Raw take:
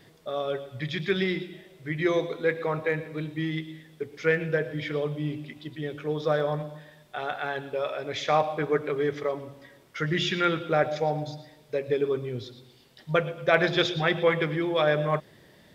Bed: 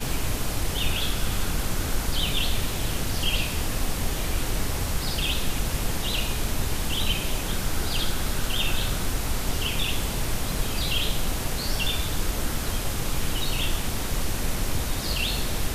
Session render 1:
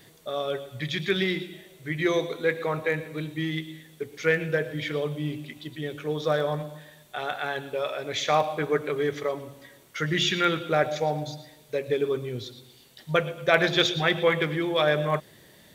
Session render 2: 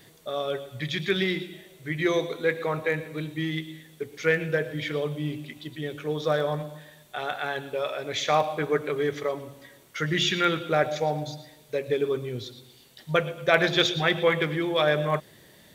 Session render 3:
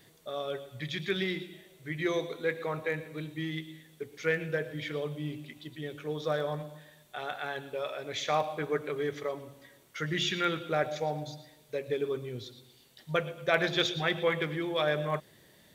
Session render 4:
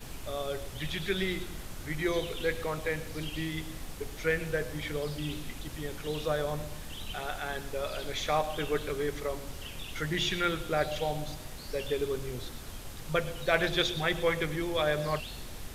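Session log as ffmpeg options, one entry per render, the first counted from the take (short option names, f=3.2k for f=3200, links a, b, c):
-af "highshelf=f=4.4k:g=11.5,bandreject=f=5.1k:w=8.9"
-af anull
-af "volume=-6dB"
-filter_complex "[1:a]volume=-15.5dB[a];[0:a][a]amix=inputs=2:normalize=0"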